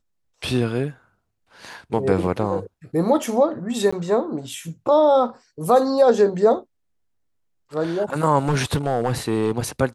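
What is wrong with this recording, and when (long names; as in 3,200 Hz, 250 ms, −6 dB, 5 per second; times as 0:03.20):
0:03.91–0:03.92: drop-out 15 ms
0:08.48–0:09.52: clipping −14.5 dBFS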